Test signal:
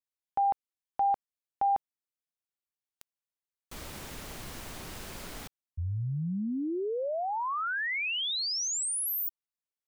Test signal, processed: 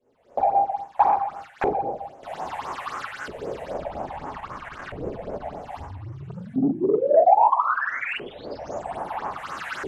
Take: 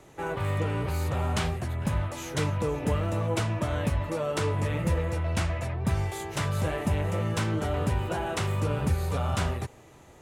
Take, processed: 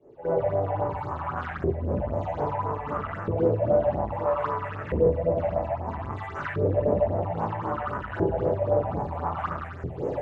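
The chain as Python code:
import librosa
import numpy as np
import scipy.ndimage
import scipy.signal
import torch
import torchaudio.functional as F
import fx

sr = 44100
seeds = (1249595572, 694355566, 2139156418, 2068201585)

y = fx.delta_mod(x, sr, bps=64000, step_db=-46.0)
y = fx.recorder_agc(y, sr, target_db=-25.0, rise_db_per_s=44.0, max_gain_db=30)
y = fx.high_shelf(y, sr, hz=10000.0, db=-10.5)
y = fx.room_shoebox(y, sr, seeds[0], volume_m3=370.0, walls='mixed', distance_m=5.6)
y = fx.phaser_stages(y, sr, stages=6, low_hz=300.0, high_hz=4200.0, hz=3.8, feedback_pct=35)
y = fx.gate_hold(y, sr, open_db=-15.0, close_db=-19.0, hold_ms=147.0, range_db=-10, attack_ms=0.38, release_ms=81.0)
y = 10.0 ** (-9.0 / 20.0) * np.tanh(y / 10.0 ** (-9.0 / 20.0))
y = fx.filter_lfo_bandpass(y, sr, shape='saw_up', hz=0.61, low_hz=410.0, high_hz=1600.0, q=3.8)
y = fx.low_shelf(y, sr, hz=270.0, db=9.0)
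y = y * librosa.db_to_amplitude(2.0)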